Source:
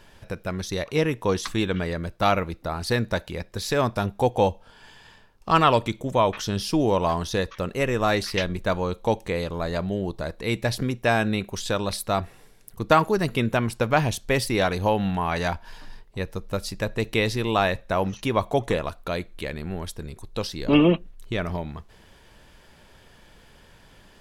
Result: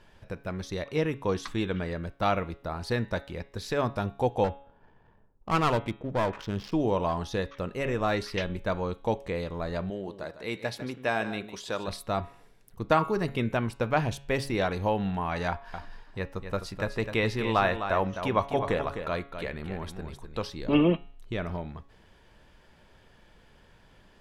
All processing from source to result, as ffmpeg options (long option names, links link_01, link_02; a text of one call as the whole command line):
ffmpeg -i in.wav -filter_complex "[0:a]asettb=1/sr,asplit=3[link_01][link_02][link_03];[link_01]atrim=end=4.444[link_04];[link_02]atrim=start=4.44:end=6.72,asetpts=PTS-STARTPTS,afade=type=in:duration=0.004:curve=qsin,afade=type=out:start_time=2.276:duration=0.004:curve=qsin,aeval=exprs='clip(val(0),-1,0.0841)':channel_layout=same,adynamicsmooth=sensitivity=5.5:basefreq=710[link_05];[link_03]atrim=start=6.716[link_06];[link_04][link_05]acrossfade=duration=0.004:curve1=hsin:curve2=qsin[link_07];[link_07][link_06]acrossfade=duration=0.004:curve1=qsin:curve2=hsin,asettb=1/sr,asplit=3[link_08][link_09][link_10];[link_08]atrim=end=9.904[link_11];[link_09]atrim=start=9.9:end=11.88,asetpts=PTS-STARTPTS,afade=type=in:duration=0.004:curve=qsin,afade=type=out:start_time=1.976:duration=0.004:curve=qsin,highpass=frequency=340:poles=1,aecho=1:1:151:0.251,atrim=end_sample=87318[link_12];[link_10]atrim=start=11.876[link_13];[link_11][link_12]acrossfade=duration=0.004:curve1=hsin:curve2=qsin[link_14];[link_14][link_13]acrossfade=duration=0.004:curve1=qsin:curve2=hsin,asettb=1/sr,asplit=3[link_15][link_16][link_17];[link_15]atrim=end=15.484[link_18];[link_16]atrim=start=15.48:end=20.5,asetpts=PTS-STARTPTS,afade=type=in:duration=0.004:curve=qsin,afade=type=out:start_time=5.016:duration=0.004:curve=qsin,equalizer=frequency=1300:width=0.8:gain=5,aecho=1:1:256:0.376,atrim=end_sample=221382[link_19];[link_17]atrim=start=20.496[link_20];[link_18][link_19]acrossfade=duration=0.004:curve1=hsin:curve2=qsin[link_21];[link_21][link_20]acrossfade=duration=0.004:curve1=qsin:curve2=hsin,aemphasis=mode=reproduction:type=cd,bandreject=frequency=139.1:width_type=h:width=4,bandreject=frequency=278.2:width_type=h:width=4,bandreject=frequency=417.3:width_type=h:width=4,bandreject=frequency=556.4:width_type=h:width=4,bandreject=frequency=695.5:width_type=h:width=4,bandreject=frequency=834.6:width_type=h:width=4,bandreject=frequency=973.7:width_type=h:width=4,bandreject=frequency=1112.8:width_type=h:width=4,bandreject=frequency=1251.9:width_type=h:width=4,bandreject=frequency=1391:width_type=h:width=4,bandreject=frequency=1530.1:width_type=h:width=4,bandreject=frequency=1669.2:width_type=h:width=4,bandreject=frequency=1808.3:width_type=h:width=4,bandreject=frequency=1947.4:width_type=h:width=4,bandreject=frequency=2086.5:width_type=h:width=4,bandreject=frequency=2225.6:width_type=h:width=4,bandreject=frequency=2364.7:width_type=h:width=4,bandreject=frequency=2503.8:width_type=h:width=4,bandreject=frequency=2642.9:width_type=h:width=4,bandreject=frequency=2782:width_type=h:width=4,bandreject=frequency=2921.1:width_type=h:width=4,bandreject=frequency=3060.2:width_type=h:width=4,bandreject=frequency=3199.3:width_type=h:width=4,bandreject=frequency=3338.4:width_type=h:width=4,bandreject=frequency=3477.5:width_type=h:width=4,bandreject=frequency=3616.6:width_type=h:width=4,bandreject=frequency=3755.7:width_type=h:width=4,bandreject=frequency=3894.8:width_type=h:width=4,volume=-5dB" out.wav